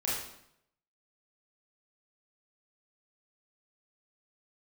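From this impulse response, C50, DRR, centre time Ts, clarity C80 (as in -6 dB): 0.0 dB, -7.0 dB, 62 ms, 4.5 dB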